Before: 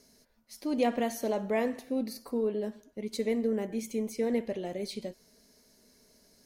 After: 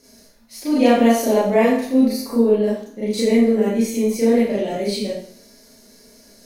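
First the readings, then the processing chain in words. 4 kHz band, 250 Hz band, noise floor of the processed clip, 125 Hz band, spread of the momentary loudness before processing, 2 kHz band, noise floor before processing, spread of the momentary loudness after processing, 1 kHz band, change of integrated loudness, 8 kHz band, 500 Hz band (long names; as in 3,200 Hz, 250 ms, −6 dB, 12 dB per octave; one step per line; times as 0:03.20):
+14.0 dB, +15.5 dB, −50 dBFS, can't be measured, 10 LU, +13.5 dB, −64 dBFS, 10 LU, +13.5 dB, +14.5 dB, +13.5 dB, +13.5 dB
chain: four-comb reverb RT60 0.53 s, combs from 27 ms, DRR −8.5 dB
level +4.5 dB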